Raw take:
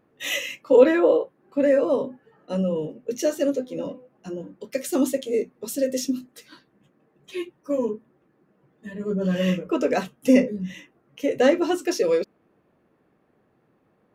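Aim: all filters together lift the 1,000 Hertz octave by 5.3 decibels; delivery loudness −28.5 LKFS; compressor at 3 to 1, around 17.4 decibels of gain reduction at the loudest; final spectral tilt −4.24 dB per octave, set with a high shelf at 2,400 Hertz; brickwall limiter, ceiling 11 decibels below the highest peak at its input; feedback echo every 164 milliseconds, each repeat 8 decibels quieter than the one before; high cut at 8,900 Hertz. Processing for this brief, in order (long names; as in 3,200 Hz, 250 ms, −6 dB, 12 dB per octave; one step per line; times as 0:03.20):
low-pass filter 8,900 Hz
parametric band 1,000 Hz +6.5 dB
high-shelf EQ 2,400 Hz +4 dB
downward compressor 3 to 1, threshold −33 dBFS
brickwall limiter −29.5 dBFS
repeating echo 164 ms, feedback 40%, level −8 dB
level +10 dB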